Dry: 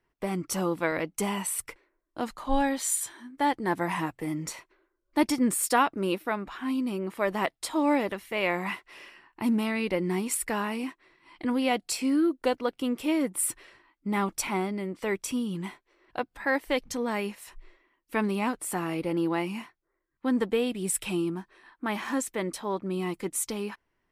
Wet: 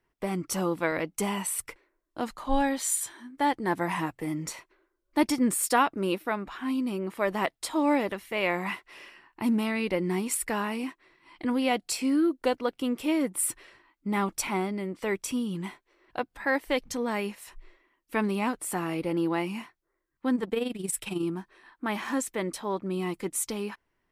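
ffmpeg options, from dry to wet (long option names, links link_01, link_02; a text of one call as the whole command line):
ffmpeg -i in.wav -filter_complex "[0:a]asettb=1/sr,asplit=3[link_01][link_02][link_03];[link_01]atrim=end=20.354[link_04];[link_02]atrim=start=20.35:end=21.23,asetpts=PTS-STARTPTS,afade=type=in:duration=0.004:curve=qsin,afade=type=out:start_time=0.876:duration=0.004:curve=qsin,tremolo=f=22:d=0.667[link_05];[link_03]atrim=start=21.226[link_06];[link_04][link_05]acrossfade=duration=0.004:curve1=hsin:curve2=qsin[link_07];[link_07][link_06]acrossfade=duration=0.004:curve1=qsin:curve2=hsin" out.wav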